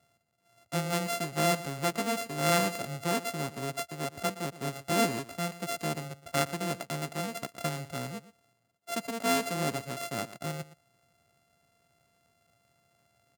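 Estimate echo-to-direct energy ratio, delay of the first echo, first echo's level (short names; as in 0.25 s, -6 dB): -16.0 dB, 0.118 s, -16.0 dB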